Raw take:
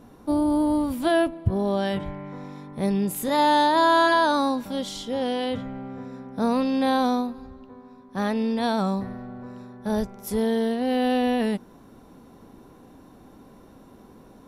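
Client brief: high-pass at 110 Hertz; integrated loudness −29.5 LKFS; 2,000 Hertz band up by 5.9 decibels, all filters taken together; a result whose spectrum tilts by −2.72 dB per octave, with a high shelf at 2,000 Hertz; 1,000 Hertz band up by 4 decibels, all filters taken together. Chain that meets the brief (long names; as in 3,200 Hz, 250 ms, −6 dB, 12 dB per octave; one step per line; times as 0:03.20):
high-pass filter 110 Hz
parametric band 1,000 Hz +3 dB
high-shelf EQ 2,000 Hz +3.5 dB
parametric band 2,000 Hz +4.5 dB
level −8 dB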